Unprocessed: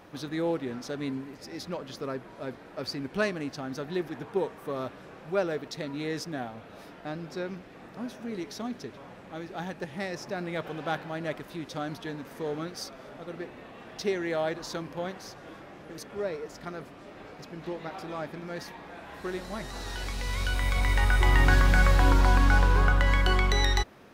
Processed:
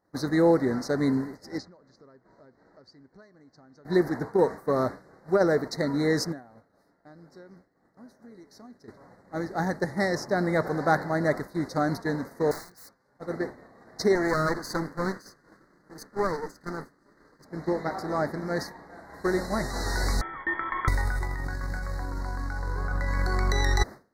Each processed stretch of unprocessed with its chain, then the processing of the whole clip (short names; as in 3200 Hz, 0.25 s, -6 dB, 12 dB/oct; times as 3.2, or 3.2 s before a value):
1.58–3.85 LPF 7000 Hz 24 dB/oct + compressor 16:1, threshold -43 dBFS
6.32–8.88 compressor 12:1, threshold -37 dBFS + resonator 280 Hz, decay 0.19 s, mix 40%
12.51–13.2 bell 330 Hz -7.5 dB 2 oct + notch comb 650 Hz + wrapped overs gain 39.5 dB
14.15–17.45 minimum comb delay 0.63 ms + bell 84 Hz -8 dB 1.2 oct
20.21–20.88 air absorption 160 m + inverted band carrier 3300 Hz
whole clip: elliptic band-stop 2000–4100 Hz, stop band 40 dB; expander -36 dBFS; negative-ratio compressor -26 dBFS, ratio -0.5; gain +4.5 dB